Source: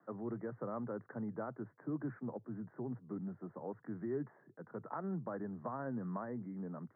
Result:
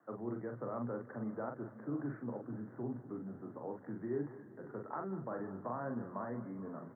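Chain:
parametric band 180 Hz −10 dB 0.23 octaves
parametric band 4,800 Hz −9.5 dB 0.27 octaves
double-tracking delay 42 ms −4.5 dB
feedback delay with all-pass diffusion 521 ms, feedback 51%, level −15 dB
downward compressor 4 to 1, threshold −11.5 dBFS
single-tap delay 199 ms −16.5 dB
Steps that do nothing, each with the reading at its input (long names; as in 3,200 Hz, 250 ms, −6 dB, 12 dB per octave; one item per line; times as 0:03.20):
parametric band 4,800 Hz: nothing at its input above 1,700 Hz
downward compressor, threshold −11.5 dBFS: peak of its input −26.5 dBFS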